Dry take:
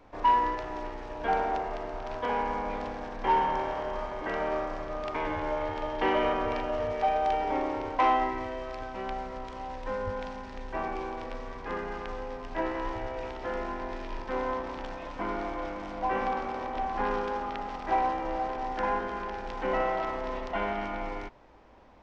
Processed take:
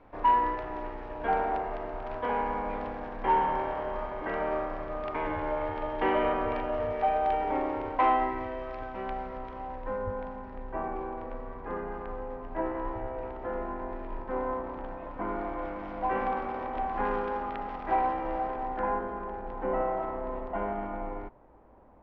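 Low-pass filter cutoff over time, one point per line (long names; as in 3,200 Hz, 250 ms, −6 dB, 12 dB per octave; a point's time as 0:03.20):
0:09.28 2,400 Hz
0:10.09 1,300 Hz
0:15.04 1,300 Hz
0:15.94 2,300 Hz
0:18.32 2,300 Hz
0:19.15 1,100 Hz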